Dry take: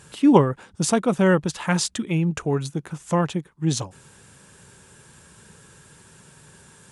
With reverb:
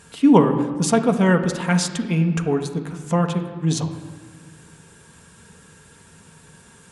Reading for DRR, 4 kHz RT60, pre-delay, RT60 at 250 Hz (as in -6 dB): 4.0 dB, 1.1 s, 4 ms, 2.2 s